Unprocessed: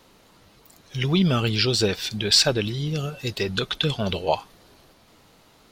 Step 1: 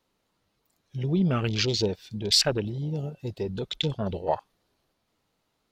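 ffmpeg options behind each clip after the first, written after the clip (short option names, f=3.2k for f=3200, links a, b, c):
-af "afwtdn=0.0447,volume=-3.5dB"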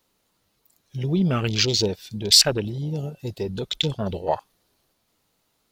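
-af "crystalizer=i=1.5:c=0,volume=2.5dB"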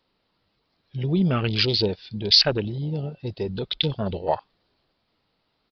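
-af "aresample=11025,aresample=44100"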